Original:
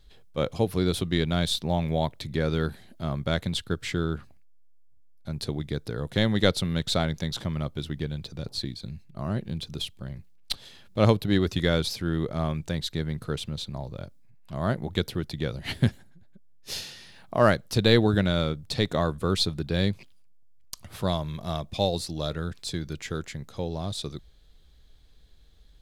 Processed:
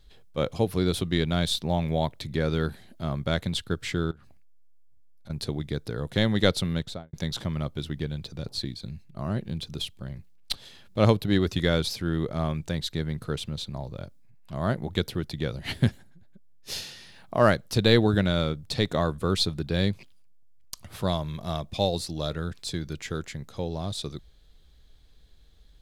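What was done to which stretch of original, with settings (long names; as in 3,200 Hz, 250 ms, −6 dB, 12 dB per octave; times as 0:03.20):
0:04.11–0:05.30: downward compressor 10 to 1, threshold −44 dBFS
0:06.68–0:07.13: fade out and dull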